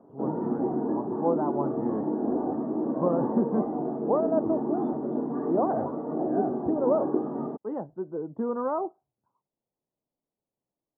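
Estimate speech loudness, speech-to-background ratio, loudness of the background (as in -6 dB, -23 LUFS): -31.0 LUFS, -1.0 dB, -30.0 LUFS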